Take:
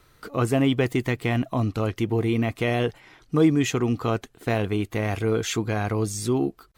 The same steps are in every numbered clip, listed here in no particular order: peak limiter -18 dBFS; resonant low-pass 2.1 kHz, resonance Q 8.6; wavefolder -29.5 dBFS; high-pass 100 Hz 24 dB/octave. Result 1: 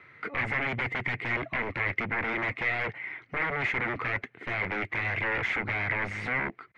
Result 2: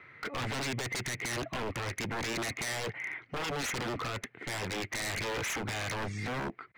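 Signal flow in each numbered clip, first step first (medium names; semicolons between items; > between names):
peak limiter > high-pass > wavefolder > resonant low-pass; resonant low-pass > peak limiter > high-pass > wavefolder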